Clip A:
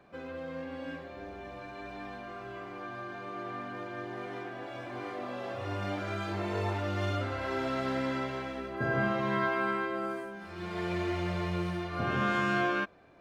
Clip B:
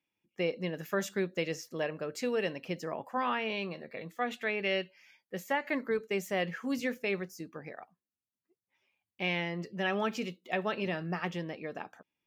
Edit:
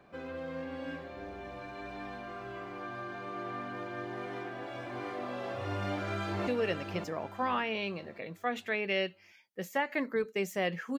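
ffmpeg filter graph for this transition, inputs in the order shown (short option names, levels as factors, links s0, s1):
-filter_complex "[0:a]apad=whole_dur=10.98,atrim=end=10.98,atrim=end=6.472[s0];[1:a]atrim=start=2.218:end=6.73[s1];[s0][s1]acrossfade=d=0.004:c1=hsin:c2=hsin,asplit=2[s2][s3];[s3]afade=t=in:st=5.82:d=0.01,afade=t=out:st=6.47:d=0.01,aecho=0:1:570|1140|1710|2280|2850:0.473151|0.189261|0.0757042|0.0302817|0.0121127[s4];[s2][s4]amix=inputs=2:normalize=0"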